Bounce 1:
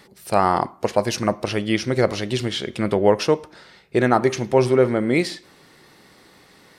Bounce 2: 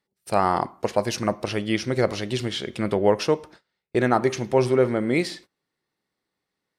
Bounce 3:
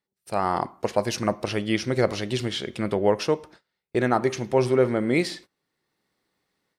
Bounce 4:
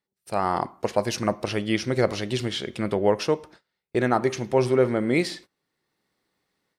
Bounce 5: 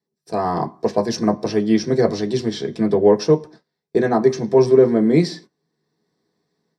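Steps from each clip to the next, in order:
noise gate −40 dBFS, range −28 dB; level −3 dB
automatic gain control gain up to 12 dB; level −6 dB
no processing that can be heard
convolution reverb, pre-delay 3 ms, DRR 0.5 dB; level −8 dB

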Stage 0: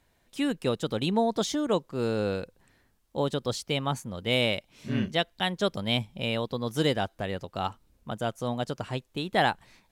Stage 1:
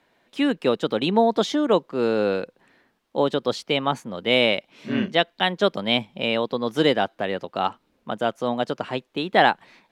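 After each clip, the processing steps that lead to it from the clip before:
three-way crossover with the lows and the highs turned down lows −22 dB, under 180 Hz, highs −14 dB, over 4,300 Hz
level +7.5 dB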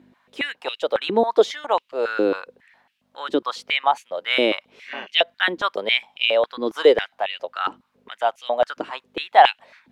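mains hum 50 Hz, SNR 18 dB
high-pass on a step sequencer 7.3 Hz 320–2,700 Hz
level −2.5 dB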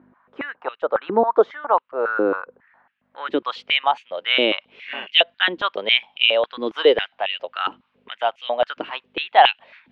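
low-pass filter sweep 1,300 Hz → 2,900 Hz, 0:02.76–0:03.52
dynamic equaliser 2,200 Hz, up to −4 dB, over −31 dBFS, Q 2.4
level −1 dB

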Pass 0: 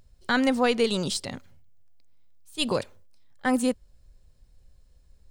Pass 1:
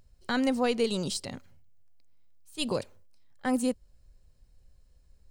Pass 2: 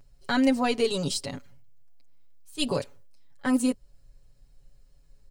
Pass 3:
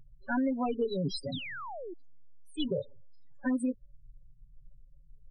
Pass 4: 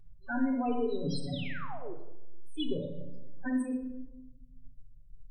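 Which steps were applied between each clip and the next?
notch filter 3,500 Hz, Q 15; dynamic equaliser 1,600 Hz, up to −5 dB, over −40 dBFS, Q 0.8; level −3 dB
comb filter 7.1 ms, depth 83%; level +1 dB
spectral peaks only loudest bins 8; downward compressor 6 to 1, threshold −28 dBFS, peak gain reduction 10 dB; sound drawn into the spectrogram fall, 0:01.32–0:01.94, 320–4,100 Hz −42 dBFS; level +1 dB
rectangular room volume 3,700 cubic metres, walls furnished, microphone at 3.5 metres; level −4.5 dB

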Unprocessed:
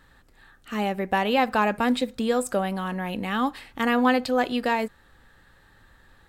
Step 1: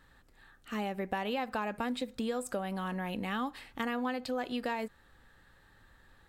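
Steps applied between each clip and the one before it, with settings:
downward compressor 6 to 1, threshold −25 dBFS, peak gain reduction 9.5 dB
level −5.5 dB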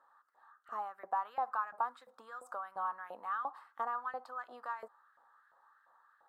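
auto-filter high-pass saw up 2.9 Hz 620–1,900 Hz
high shelf with overshoot 1,700 Hz −12 dB, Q 3
level −7 dB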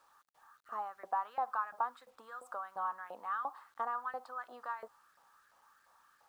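bit reduction 12 bits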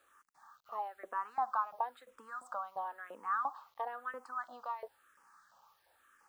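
frequency shifter mixed with the dry sound −1 Hz
level +3.5 dB

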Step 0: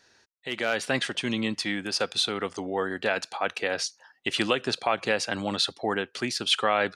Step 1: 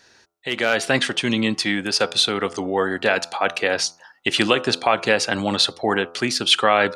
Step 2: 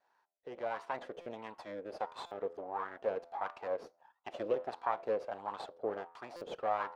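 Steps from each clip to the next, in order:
hum removal 84.87 Hz, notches 17; level +7.5 dB
half-wave rectification; LFO wah 1.5 Hz 470–1,000 Hz, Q 4.6; buffer that repeats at 0:01.21/0:02.26/0:06.36, samples 256, times 8; level −3 dB

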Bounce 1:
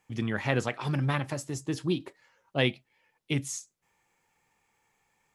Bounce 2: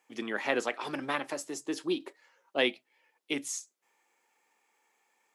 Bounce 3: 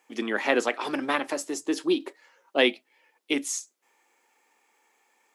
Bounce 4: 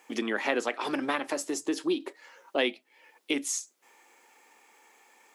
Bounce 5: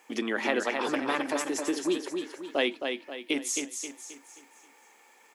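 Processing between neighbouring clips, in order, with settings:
high-pass filter 280 Hz 24 dB per octave
low shelf with overshoot 180 Hz −7.5 dB, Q 1.5; level +5.5 dB
downward compressor 2 to 1, threshold −42 dBFS, peak gain reduction 14 dB; level +7.5 dB
repeating echo 266 ms, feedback 41%, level −5.5 dB

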